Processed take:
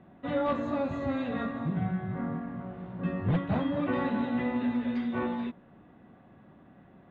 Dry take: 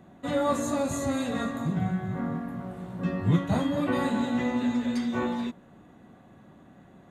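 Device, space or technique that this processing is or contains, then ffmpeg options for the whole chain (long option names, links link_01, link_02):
synthesiser wavefolder: -af "aeval=exprs='0.133*(abs(mod(val(0)/0.133+3,4)-2)-1)':channel_layout=same,lowpass=frequency=3200:width=0.5412,lowpass=frequency=3200:width=1.3066,volume=-2.5dB"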